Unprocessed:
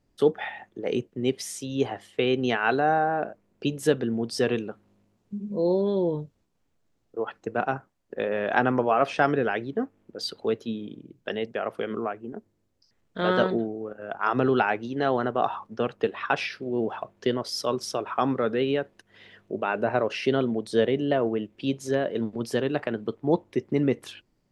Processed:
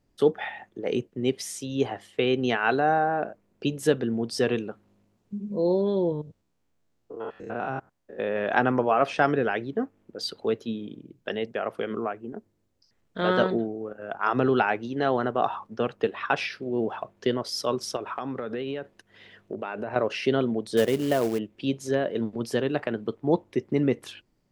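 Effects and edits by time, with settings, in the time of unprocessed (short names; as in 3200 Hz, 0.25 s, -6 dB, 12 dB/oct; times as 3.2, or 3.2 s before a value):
6.12–8.36 stepped spectrum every 0.1 s
17.96–19.96 compressor 10:1, threshold -27 dBFS
20.77–21.39 short-mantissa float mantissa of 2-bit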